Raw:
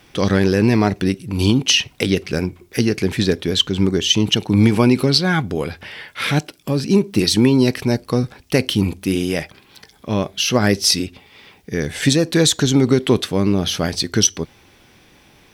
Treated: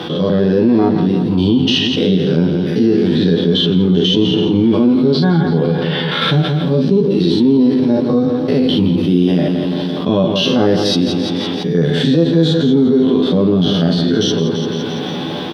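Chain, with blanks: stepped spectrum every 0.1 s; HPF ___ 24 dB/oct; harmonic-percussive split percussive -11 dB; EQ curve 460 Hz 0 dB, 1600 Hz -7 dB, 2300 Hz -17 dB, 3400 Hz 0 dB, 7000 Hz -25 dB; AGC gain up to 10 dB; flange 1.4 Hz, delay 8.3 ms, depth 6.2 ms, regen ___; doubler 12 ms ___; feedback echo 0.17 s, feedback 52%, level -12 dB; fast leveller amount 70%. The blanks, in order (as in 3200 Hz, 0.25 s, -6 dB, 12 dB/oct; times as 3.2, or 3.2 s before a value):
140 Hz, -86%, -3 dB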